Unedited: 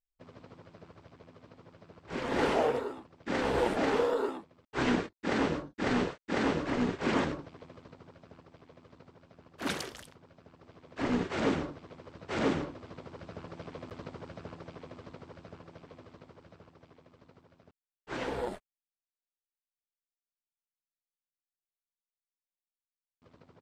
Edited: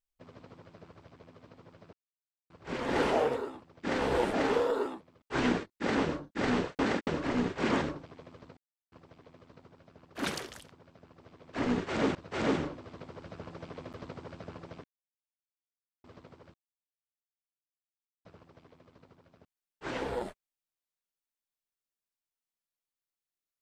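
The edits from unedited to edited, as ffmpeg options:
-filter_complex "[0:a]asplit=10[a][b][c][d][e][f][g][h][i][j];[a]atrim=end=1.93,asetpts=PTS-STARTPTS,afade=t=out:st=1.926:d=0.004:c=hsin,apad=pad_dur=0.57[k];[b]atrim=start=1.93:end=6.222,asetpts=PTS-STARTPTS,afade=t=in:d=0.004:c=hsin[l];[c]atrim=start=6.218:end=6.502,asetpts=PTS-STARTPTS,areverse[m];[d]atrim=start=6.498:end=8,asetpts=PTS-STARTPTS,afade=t=out:st=1.498:d=0.004:c=hsin[n];[e]atrim=start=8:end=8.35,asetpts=PTS-STARTPTS,volume=0[o];[f]atrim=start=8.35:end=11.582,asetpts=PTS-STARTPTS,afade=t=in:d=0.004:c=hsin[p];[g]atrim=start=12.118:end=14.81,asetpts=PTS-STARTPTS,afade=t=out:st=2.688:d=0.004:c=hsin[q];[h]atrim=start=14.81:end=16.01,asetpts=PTS-STARTPTS,volume=0[r];[i]atrim=start=16.01:end=16.51,asetpts=PTS-STARTPTS,afade=t=in:d=0.004:c=hsin,afade=t=out:st=0.496:d=0.004:c=hsin,apad=pad_dur=1.71[s];[j]atrim=start=16.51,asetpts=PTS-STARTPTS,afade=t=in:d=0.004:c=hsin[t];[k][l]concat=n=2:v=0:a=1[u];[u][m]acrossfade=d=0.004:c1=hsin:c2=hsin[v];[n][o][p]concat=n=3:v=0:a=1[w];[v][w]acrossfade=d=0.004:c1=hsin:c2=hsin[x];[q][r][s][t]concat=n=4:v=0:a=1[y];[x][y]acrossfade=d=0.004:c1=hsin:c2=hsin"

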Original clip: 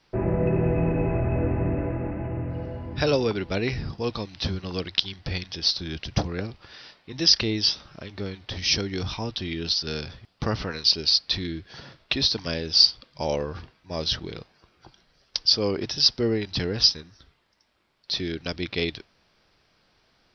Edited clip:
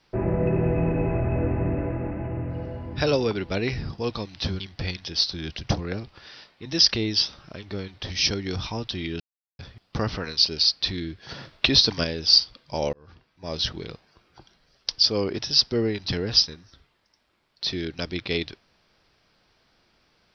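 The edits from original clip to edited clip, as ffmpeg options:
-filter_complex "[0:a]asplit=7[a][b][c][d][e][f][g];[a]atrim=end=4.602[h];[b]atrim=start=5.068:end=9.67,asetpts=PTS-STARTPTS,afade=t=out:st=4.598:d=0.004:c=hsin[i];[c]atrim=start=9.67:end=10.06,asetpts=PTS-STARTPTS,volume=0[j];[d]atrim=start=10.06:end=11.762,asetpts=PTS-STARTPTS,afade=t=in:d=0.004:c=hsin[k];[e]atrim=start=11.758:end=12.512,asetpts=PTS-STARTPTS,volume=5dB[l];[f]atrim=start=12.508:end=13.4,asetpts=PTS-STARTPTS,afade=t=out:st=0.888:d=0.004:c=hsin[m];[g]atrim=start=13.4,asetpts=PTS-STARTPTS,afade=t=in:d=0.73[n];[i][j][k]concat=n=3:v=0:a=1[o];[h][o]acrossfade=d=0.004:c1=hsin:c2=hsin[p];[p][l]acrossfade=d=0.004:c1=hsin:c2=hsin[q];[m][n]concat=n=2:v=0:a=1[r];[q][r]acrossfade=d=0.004:c1=hsin:c2=hsin"

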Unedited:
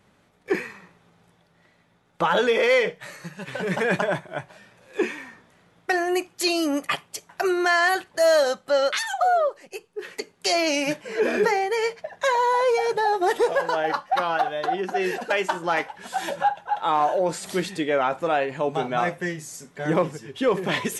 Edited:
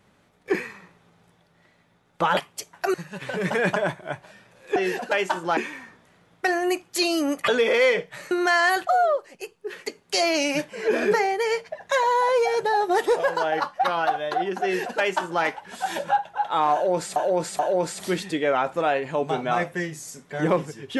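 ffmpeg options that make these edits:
-filter_complex "[0:a]asplit=10[a][b][c][d][e][f][g][h][i][j];[a]atrim=end=2.372[k];[b]atrim=start=6.928:end=7.502[l];[c]atrim=start=3.198:end=5.022[m];[d]atrim=start=14.948:end=15.762[n];[e]atrim=start=5.018:end=6.932[o];[f]atrim=start=2.368:end=3.202[p];[g]atrim=start=7.498:end=8.062[q];[h]atrim=start=9.188:end=17.482[r];[i]atrim=start=17.048:end=17.482[s];[j]atrim=start=17.048[t];[k][l]acrossfade=d=0.004:c1=hsin:c2=hsin[u];[u][m]acrossfade=d=0.004:c1=hsin:c2=hsin[v];[v][n]acrossfade=d=0.004:c1=hsin:c2=hsin[w];[w][o]acrossfade=d=0.004:c1=hsin:c2=hsin[x];[x][p]acrossfade=d=0.004:c1=hsin:c2=hsin[y];[y][q]acrossfade=d=0.004:c1=hsin:c2=hsin[z];[z][r]acrossfade=d=0.004:c1=hsin:c2=hsin[aa];[aa][s]acrossfade=d=0.004:c1=hsin:c2=hsin[ab];[ab][t]acrossfade=d=0.004:c1=hsin:c2=hsin"

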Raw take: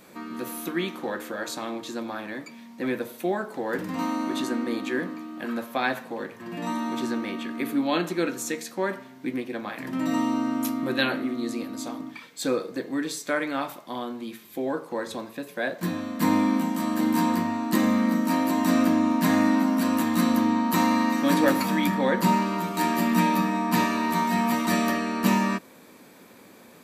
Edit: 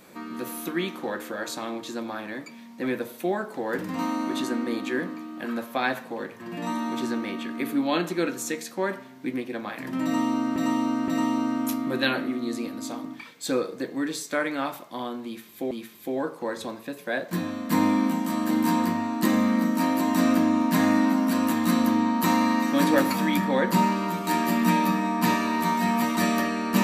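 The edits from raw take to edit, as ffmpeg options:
-filter_complex "[0:a]asplit=4[a][b][c][d];[a]atrim=end=10.562[e];[b]atrim=start=10.038:end=10.562[f];[c]atrim=start=10.038:end=14.672[g];[d]atrim=start=14.208[h];[e][f]acrossfade=d=0.004:c1=hsin:c2=hsin[i];[i][g]acrossfade=d=0.004:c1=hsin:c2=hsin[j];[j][h]acrossfade=d=0.004:c1=hsin:c2=hsin"

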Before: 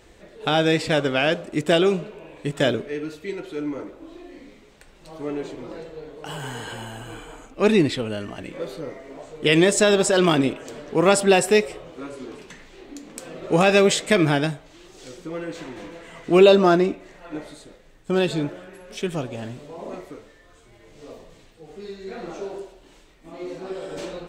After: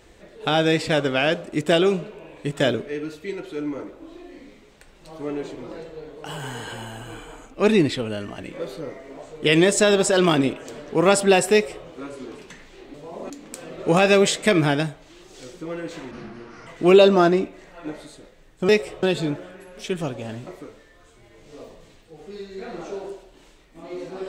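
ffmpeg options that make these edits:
-filter_complex "[0:a]asplit=8[a][b][c][d][e][f][g][h];[a]atrim=end=12.942[i];[b]atrim=start=19.598:end=19.962[j];[c]atrim=start=12.938:end=15.754[k];[d]atrim=start=15.75:end=16.14,asetpts=PTS-STARTPTS,asetrate=30870,aresample=44100[l];[e]atrim=start=16.136:end=18.162[m];[f]atrim=start=11.518:end=11.862[n];[g]atrim=start=18.158:end=19.602[o];[h]atrim=start=19.958[p];[i][j]acrossfade=d=0.004:c1=hsin:c2=hsin[q];[q][k]acrossfade=d=0.004:c1=hsin:c2=hsin[r];[r][l]acrossfade=d=0.004:c1=hsin:c2=hsin[s];[s][m]acrossfade=d=0.004:c1=hsin:c2=hsin[t];[t][n]acrossfade=d=0.004:c1=hsin:c2=hsin[u];[u][o]acrossfade=d=0.004:c1=hsin:c2=hsin[v];[v][p]acrossfade=d=0.004:c1=hsin:c2=hsin"

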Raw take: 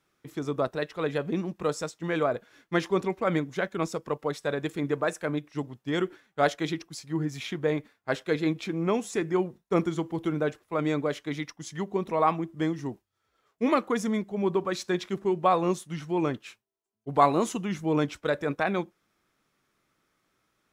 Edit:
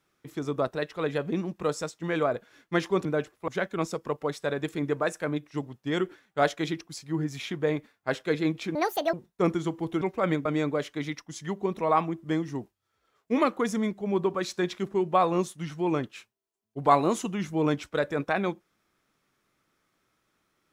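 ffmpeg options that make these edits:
-filter_complex "[0:a]asplit=7[a][b][c][d][e][f][g];[a]atrim=end=3.052[h];[b]atrim=start=10.328:end=10.762[i];[c]atrim=start=3.488:end=8.764[j];[d]atrim=start=8.76:end=9.45,asetpts=PTS-STARTPTS,asetrate=79380,aresample=44100[k];[e]atrim=start=9.446:end=10.332[l];[f]atrim=start=3.048:end=3.492[m];[g]atrim=start=10.758[n];[h][i]acrossfade=d=0.004:c1=hsin:c2=hsin[o];[o][j]acrossfade=d=0.004:c1=hsin:c2=hsin[p];[p][k]acrossfade=d=0.004:c1=hsin:c2=hsin[q];[q][l]acrossfade=d=0.004:c1=hsin:c2=hsin[r];[r][m]acrossfade=d=0.004:c1=hsin:c2=hsin[s];[s][n]acrossfade=d=0.004:c1=hsin:c2=hsin"

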